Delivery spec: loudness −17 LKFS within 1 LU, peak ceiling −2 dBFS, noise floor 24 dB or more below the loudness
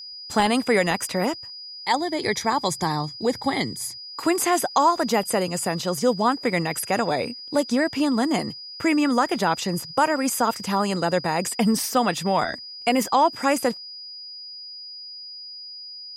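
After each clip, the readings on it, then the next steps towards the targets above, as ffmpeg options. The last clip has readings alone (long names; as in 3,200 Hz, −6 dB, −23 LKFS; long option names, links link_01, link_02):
interfering tone 4,900 Hz; level of the tone −36 dBFS; integrated loudness −23.0 LKFS; sample peak −7.5 dBFS; target loudness −17.0 LKFS
→ -af "bandreject=frequency=4900:width=30"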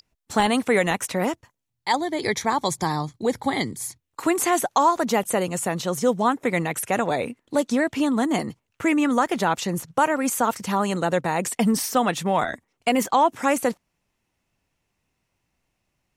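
interfering tone none found; integrated loudness −23.5 LKFS; sample peak −7.5 dBFS; target loudness −17.0 LKFS
→ -af "volume=6.5dB,alimiter=limit=-2dB:level=0:latency=1"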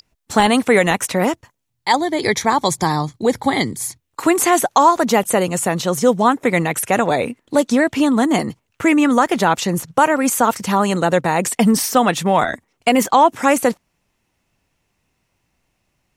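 integrated loudness −17.0 LKFS; sample peak −2.0 dBFS; background noise floor −71 dBFS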